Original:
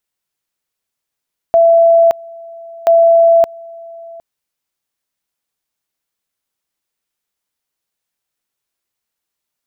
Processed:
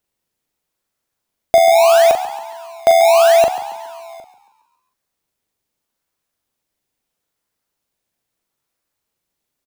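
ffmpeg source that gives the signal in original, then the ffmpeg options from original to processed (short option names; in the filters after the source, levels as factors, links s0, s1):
-f lavfi -i "aevalsrc='pow(10,(-5-24.5*gte(mod(t,1.33),0.57))/20)*sin(2*PI*669*t)':d=2.66:s=44100"
-filter_complex "[0:a]asplit=2[s0][s1];[s1]acrusher=samples=21:mix=1:aa=0.000001:lfo=1:lforange=21:lforate=0.77,volume=0.376[s2];[s0][s2]amix=inputs=2:normalize=0,asplit=2[s3][s4];[s4]adelay=41,volume=0.422[s5];[s3][s5]amix=inputs=2:normalize=0,asplit=6[s6][s7][s8][s9][s10][s11];[s7]adelay=138,afreqshift=71,volume=0.2[s12];[s8]adelay=276,afreqshift=142,volume=0.104[s13];[s9]adelay=414,afreqshift=213,volume=0.0537[s14];[s10]adelay=552,afreqshift=284,volume=0.0282[s15];[s11]adelay=690,afreqshift=355,volume=0.0146[s16];[s6][s12][s13][s14][s15][s16]amix=inputs=6:normalize=0"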